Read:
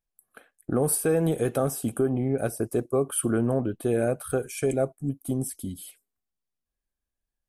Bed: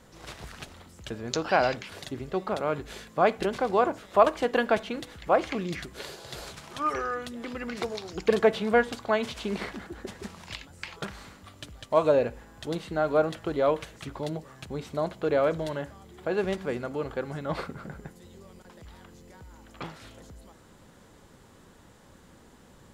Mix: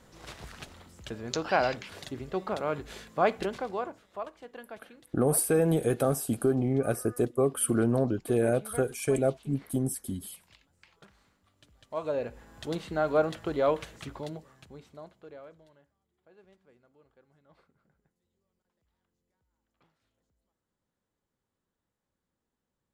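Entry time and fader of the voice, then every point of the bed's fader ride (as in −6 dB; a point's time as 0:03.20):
4.45 s, −1.0 dB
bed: 0:03.39 −2.5 dB
0:04.32 −20.5 dB
0:11.49 −20.5 dB
0:12.56 −1.5 dB
0:14.02 −1.5 dB
0:15.89 −31.5 dB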